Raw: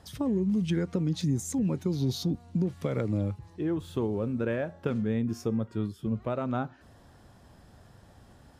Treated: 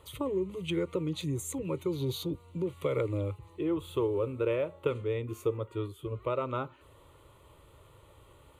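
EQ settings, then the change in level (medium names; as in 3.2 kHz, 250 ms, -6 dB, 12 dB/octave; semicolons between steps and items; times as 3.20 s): bass shelf 210 Hz -6.5 dB; static phaser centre 1.1 kHz, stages 8; +4.5 dB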